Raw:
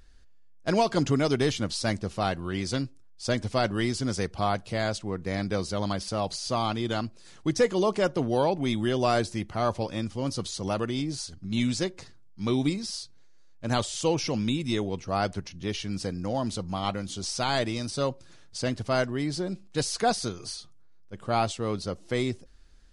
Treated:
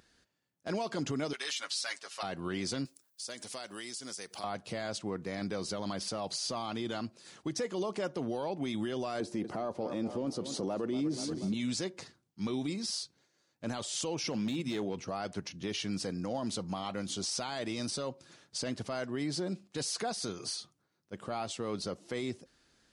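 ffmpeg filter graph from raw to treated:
ffmpeg -i in.wav -filter_complex "[0:a]asettb=1/sr,asplit=3[link_01][link_02][link_03];[link_01]atrim=end=1.334[link_04];[link_02]atrim=start=1.33:end=2.23,asetpts=PTS-STARTPTS,afade=type=in:duration=0.004:curve=qsin,afade=type=out:start_time=0.896:duration=0.004:curve=qsin,highpass=1400,aecho=1:1:7.2:0.83,atrim=end_sample=39690[link_05];[link_03]atrim=start=2.226[link_06];[link_04][link_05]acrossfade=duration=0.004:curve1=hsin:curve2=qsin[link_07];[link_07][link_06]acrossfade=duration=0.004:curve1=qsin:curve2=hsin,asettb=1/sr,asplit=3[link_08][link_09][link_10];[link_08]atrim=end=2.854[link_11];[link_09]atrim=start=2.85:end=4.44,asetpts=PTS-STARTPTS,afade=type=in:duration=0.004:curve=qsin,afade=type=out:start_time=1.586:duration=0.004:curve=qsin,aemphasis=mode=production:type=riaa,acompressor=threshold=-40dB:ratio=5:attack=3.2:release=140:knee=1:detection=peak[link_12];[link_10]atrim=start=4.436[link_13];[link_11][link_12]acrossfade=duration=0.004:curve1=hsin:curve2=qsin[link_14];[link_14][link_13]acrossfade=duration=0.004:curve1=qsin:curve2=hsin,asettb=1/sr,asplit=3[link_15][link_16][link_17];[link_15]atrim=end=9.204[link_18];[link_16]atrim=start=9.2:end=11.54,asetpts=PTS-STARTPTS,afade=type=in:duration=0.004:curve=qsin,afade=type=out:start_time=2.336:duration=0.004:curve=qsin,equalizer=frequency=380:width=0.4:gain=13,aecho=1:1:240|480|720|960:0.15|0.0673|0.0303|0.0136,atrim=end_sample=103194[link_19];[link_17]atrim=start=11.536[link_20];[link_18][link_19]acrossfade=duration=0.004:curve1=hsin:curve2=qsin[link_21];[link_21][link_20]acrossfade=duration=0.004:curve1=qsin:curve2=hsin,asettb=1/sr,asplit=3[link_22][link_23][link_24];[link_22]atrim=end=14.314[link_25];[link_23]atrim=start=14.31:end=15,asetpts=PTS-STARTPTS,afade=type=in:duration=0.004:curve=qsin,afade=type=out:start_time=0.686:duration=0.004:curve=qsin,highshelf=frequency=6800:gain=-6,bandreject=frequency=50:width_type=h:width=6,bandreject=frequency=100:width_type=h:width=6,bandreject=frequency=150:width_type=h:width=6,volume=22.5dB,asoftclip=hard,volume=-22.5dB[link_26];[link_24]atrim=start=14.996[link_27];[link_25][link_26]acrossfade=duration=0.004:curve1=hsin:curve2=qsin[link_28];[link_28][link_27]acrossfade=duration=0.004:curve1=qsin:curve2=hsin,highpass=160,acompressor=threshold=-29dB:ratio=4,alimiter=level_in=2dB:limit=-24dB:level=0:latency=1:release=10,volume=-2dB" out.wav

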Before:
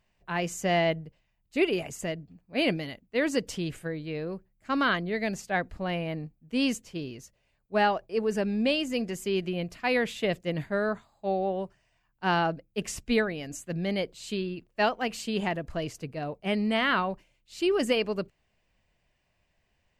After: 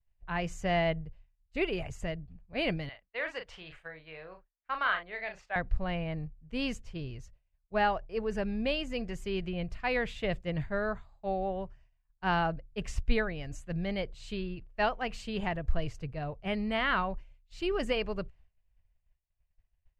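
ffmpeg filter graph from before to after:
ffmpeg -i in.wav -filter_complex "[0:a]asettb=1/sr,asplit=3[link_01][link_02][link_03];[link_01]atrim=end=2.894[link_04];[link_02]atrim=start=2.89:end=5.56,asetpts=PTS-STARTPTS,afade=type=in:duration=0.004:curve=qsin,afade=type=out:start_time=2.666:duration=0.004:curve=qsin,acrossover=split=580 3900:gain=0.0891 1 0.178[link_05][link_06][link_07];[link_05][link_06][link_07]amix=inputs=3:normalize=0,asplit=2[link_08][link_09];[link_09]adelay=38,volume=-7dB[link_10];[link_08][link_10]amix=inputs=2:normalize=0,atrim=end_sample=117747[link_11];[link_03]atrim=start=5.556[link_12];[link_04][link_11]acrossfade=duration=0.004:curve1=hsin:curve2=qsin[link_13];[link_13][link_12]acrossfade=duration=0.004:curve1=qsin:curve2=hsin,aemphasis=mode=reproduction:type=riaa,agate=range=-33dB:threshold=-46dB:ratio=3:detection=peak,equalizer=frequency=250:width_type=o:width=2.1:gain=-14.5" out.wav

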